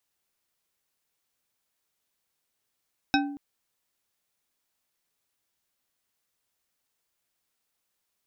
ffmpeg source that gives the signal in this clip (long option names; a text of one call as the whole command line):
ffmpeg -f lavfi -i "aevalsrc='0.0944*pow(10,-3*t/0.77)*sin(2*PI*285*t)+0.0841*pow(10,-3*t/0.379)*sin(2*PI*785.7*t)+0.075*pow(10,-3*t/0.236)*sin(2*PI*1540.1*t)+0.0668*pow(10,-3*t/0.166)*sin(2*PI*2545.9*t)+0.0596*pow(10,-3*t/0.126)*sin(2*PI*3801.9*t)+0.0531*pow(10,-3*t/0.099)*sin(2*PI*5312.4*t)':duration=0.23:sample_rate=44100" out.wav